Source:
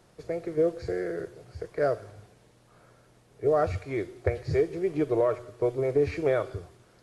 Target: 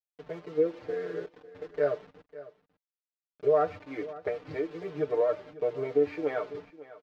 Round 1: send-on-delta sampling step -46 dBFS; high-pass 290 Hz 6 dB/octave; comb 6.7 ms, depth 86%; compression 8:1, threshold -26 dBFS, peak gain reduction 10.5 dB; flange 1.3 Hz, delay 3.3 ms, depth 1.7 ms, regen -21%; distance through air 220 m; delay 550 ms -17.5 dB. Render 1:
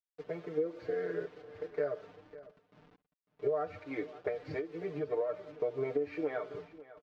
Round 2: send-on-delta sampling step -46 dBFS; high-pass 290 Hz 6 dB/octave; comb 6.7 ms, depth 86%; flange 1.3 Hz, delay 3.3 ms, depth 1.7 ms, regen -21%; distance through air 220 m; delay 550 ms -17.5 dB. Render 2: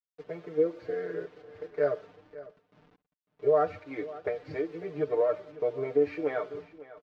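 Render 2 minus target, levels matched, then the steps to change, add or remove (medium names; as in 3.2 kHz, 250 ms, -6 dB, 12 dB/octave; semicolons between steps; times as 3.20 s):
send-on-delta sampling: distortion -7 dB
change: send-on-delta sampling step -39.5 dBFS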